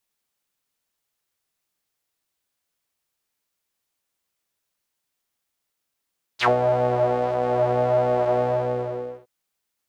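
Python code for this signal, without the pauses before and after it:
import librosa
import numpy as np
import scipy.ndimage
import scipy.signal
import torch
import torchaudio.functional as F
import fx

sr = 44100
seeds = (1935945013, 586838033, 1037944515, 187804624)

y = fx.sub_patch_pwm(sr, seeds[0], note=47, wave2='square', interval_st=0, detune_cents=15, level2_db=-8.0, sub_db=-15.0, noise_db=-30.0, kind='bandpass', cutoff_hz=490.0, q=4.5, env_oct=3.5, env_decay_s=0.09, env_sustain_pct=10, attack_ms=43.0, decay_s=0.12, sustain_db=-6.5, release_s=0.87, note_s=2.0, lfo_hz=1.6, width_pct=50, width_swing_pct=13)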